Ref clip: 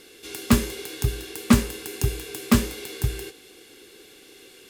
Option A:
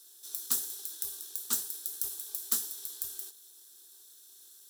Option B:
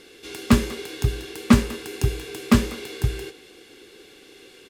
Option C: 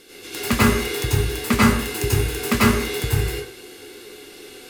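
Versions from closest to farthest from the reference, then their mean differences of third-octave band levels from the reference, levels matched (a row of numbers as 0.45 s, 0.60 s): B, C, A; 2.0 dB, 6.0 dB, 12.0 dB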